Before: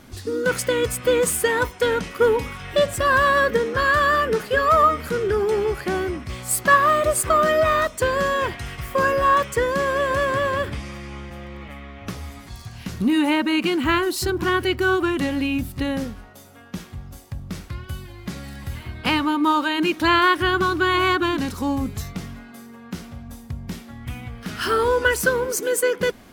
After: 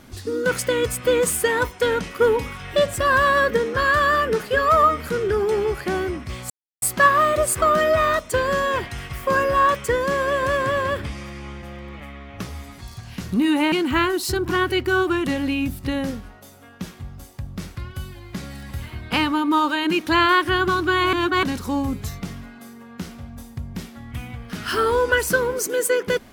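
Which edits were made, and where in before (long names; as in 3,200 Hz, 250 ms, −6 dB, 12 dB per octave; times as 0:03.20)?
0:06.50: splice in silence 0.32 s
0:13.40–0:13.65: remove
0:21.06–0:21.36: reverse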